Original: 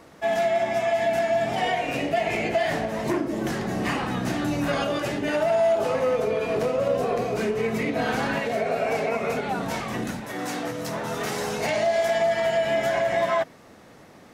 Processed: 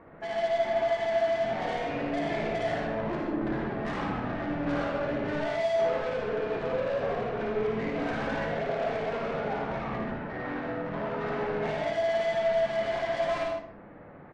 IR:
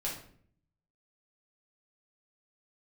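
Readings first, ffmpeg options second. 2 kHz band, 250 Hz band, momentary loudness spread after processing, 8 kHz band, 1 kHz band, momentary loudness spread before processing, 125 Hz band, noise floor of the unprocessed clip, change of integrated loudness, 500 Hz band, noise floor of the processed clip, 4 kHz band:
−6.0 dB, −4.5 dB, 7 LU, below −15 dB, −5.5 dB, 7 LU, −4.5 dB, −49 dBFS, −5.0 dB, −4.5 dB, −48 dBFS, −8.0 dB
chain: -filter_complex "[0:a]lowpass=frequency=2000:width=0.5412,lowpass=frequency=2000:width=1.3066,lowshelf=frequency=69:gain=3,asoftclip=type=tanh:threshold=-28dB,aecho=1:1:14|56:0.141|0.596,asplit=2[link_01][link_02];[1:a]atrim=start_sample=2205,adelay=77[link_03];[link_02][link_03]afir=irnorm=-1:irlink=0,volume=-4.5dB[link_04];[link_01][link_04]amix=inputs=2:normalize=0,volume=-3dB" -ar 24000 -c:a libmp3lame -b:a 48k

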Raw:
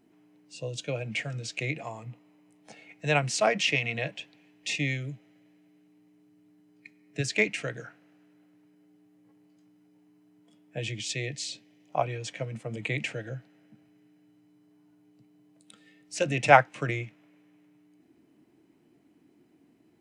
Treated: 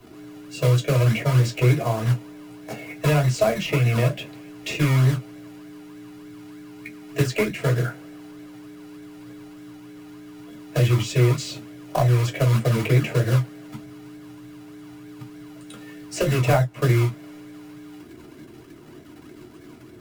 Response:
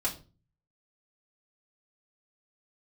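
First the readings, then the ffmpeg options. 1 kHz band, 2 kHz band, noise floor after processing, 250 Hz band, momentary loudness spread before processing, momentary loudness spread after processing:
−1.0 dB, −0.5 dB, −45 dBFS, +11.5 dB, 18 LU, 21 LU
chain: -filter_complex "[0:a]tiltshelf=frequency=1100:gain=6,asplit=2[link_01][link_02];[link_02]acompressor=threshold=-35dB:ratio=6,volume=0dB[link_03];[link_01][link_03]amix=inputs=2:normalize=0,acrusher=bits=3:mode=log:mix=0:aa=0.000001,acrossover=split=200|860[link_04][link_05][link_06];[link_04]acompressor=threshold=-31dB:ratio=4[link_07];[link_05]acompressor=threshold=-31dB:ratio=4[link_08];[link_06]acompressor=threshold=-38dB:ratio=4[link_09];[link_07][link_08][link_09]amix=inputs=3:normalize=0,acrossover=split=290[link_10][link_11];[link_10]acrusher=samples=32:mix=1:aa=0.000001:lfo=1:lforange=19.2:lforate=3.3[link_12];[link_12][link_11]amix=inputs=2:normalize=0[link_13];[1:a]atrim=start_sample=2205,atrim=end_sample=4410,asetrate=88200,aresample=44100[link_14];[link_13][link_14]afir=irnorm=-1:irlink=0,volume=8.5dB"

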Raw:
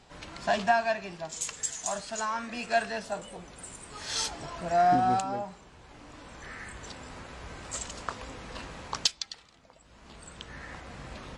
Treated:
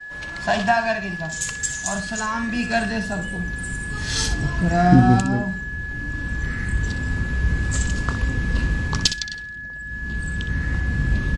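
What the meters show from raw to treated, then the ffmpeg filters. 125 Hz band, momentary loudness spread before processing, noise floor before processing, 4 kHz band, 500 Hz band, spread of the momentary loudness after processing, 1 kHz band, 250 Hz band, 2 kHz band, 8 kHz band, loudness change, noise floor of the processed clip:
+22.5 dB, 19 LU, −57 dBFS, +6.5 dB, +4.0 dB, 10 LU, +3.5 dB, +17.0 dB, +13.0 dB, +7.0 dB, +8.0 dB, −33 dBFS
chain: -filter_complex "[0:a]asplit=2[link_01][link_02];[link_02]aecho=0:1:62|124:0.316|0.0474[link_03];[link_01][link_03]amix=inputs=2:normalize=0,asubboost=boost=10:cutoff=210,aeval=exprs='val(0)+0.0158*sin(2*PI*1700*n/s)':channel_layout=same,agate=range=-33dB:threshold=-36dB:ratio=3:detection=peak,volume=6.5dB"

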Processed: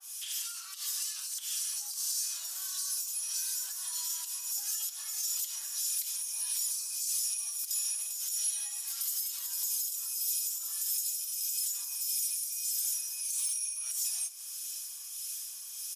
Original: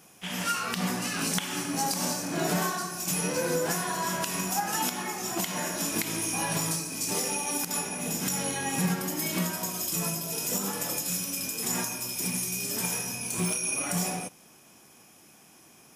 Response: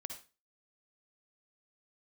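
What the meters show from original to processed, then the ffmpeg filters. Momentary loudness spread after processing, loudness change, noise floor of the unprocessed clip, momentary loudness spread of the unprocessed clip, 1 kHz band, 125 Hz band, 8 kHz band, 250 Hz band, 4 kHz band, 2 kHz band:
6 LU, −3.0 dB, −56 dBFS, 3 LU, below −25 dB, below −40 dB, −0.5 dB, below −40 dB, −3.5 dB, −18.5 dB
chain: -filter_complex "[0:a]highpass=frequency=1100:width=0.5412,highpass=frequency=1100:width=1.3066,aecho=1:1:5.2:0.59,acompressor=threshold=-42dB:ratio=6,alimiter=level_in=14.5dB:limit=-24dB:level=0:latency=1:release=139,volume=-14.5dB,acontrast=60,acrossover=split=1500[link_01][link_02];[link_01]aeval=exprs='val(0)*(1-0.5/2+0.5/2*cos(2*PI*1.6*n/s))':channel_layout=same[link_03];[link_02]aeval=exprs='val(0)*(1-0.5/2-0.5/2*cos(2*PI*1.6*n/s))':channel_layout=same[link_04];[link_03][link_04]amix=inputs=2:normalize=0,asoftclip=type=tanh:threshold=-32dB,aexciter=amount=5.7:drive=5.9:freq=3200,flanger=delay=2.6:depth=3.2:regen=-75:speed=0.15:shape=triangular,asplit=6[link_05][link_06][link_07][link_08][link_09][link_10];[link_06]adelay=248,afreqshift=-99,volume=-20dB[link_11];[link_07]adelay=496,afreqshift=-198,volume=-24.6dB[link_12];[link_08]adelay=744,afreqshift=-297,volume=-29.2dB[link_13];[link_09]adelay=992,afreqshift=-396,volume=-33.7dB[link_14];[link_10]adelay=1240,afreqshift=-495,volume=-38.3dB[link_15];[link_05][link_11][link_12][link_13][link_14][link_15]amix=inputs=6:normalize=0,aresample=32000,aresample=44100,adynamicequalizer=threshold=0.00251:dfrequency=2000:dqfactor=0.7:tfrequency=2000:tqfactor=0.7:attack=5:release=100:ratio=0.375:range=1.5:mode=boostabove:tftype=highshelf,volume=-5dB"

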